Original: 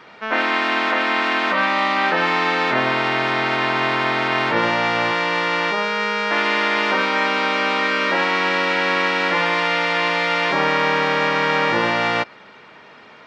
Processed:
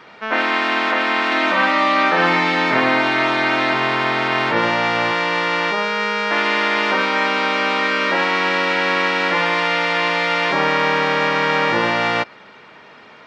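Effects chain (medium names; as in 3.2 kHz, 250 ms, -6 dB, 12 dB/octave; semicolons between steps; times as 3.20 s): 1.26–3.74 s: flutter echo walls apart 9.9 m, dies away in 0.64 s; trim +1 dB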